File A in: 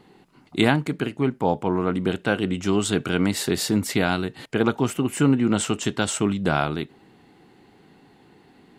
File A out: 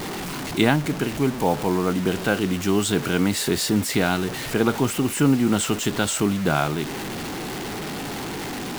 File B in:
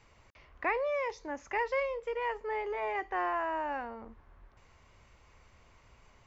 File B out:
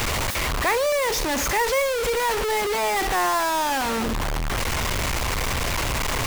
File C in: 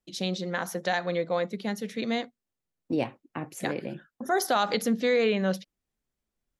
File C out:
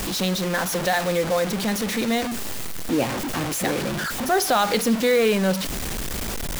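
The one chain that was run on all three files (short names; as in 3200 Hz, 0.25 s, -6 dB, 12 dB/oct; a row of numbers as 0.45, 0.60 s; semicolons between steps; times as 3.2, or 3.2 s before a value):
zero-crossing step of -29.5 dBFS; requantised 6-bit, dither none; match loudness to -23 LUFS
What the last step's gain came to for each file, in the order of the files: -0.5, +6.0, +3.5 dB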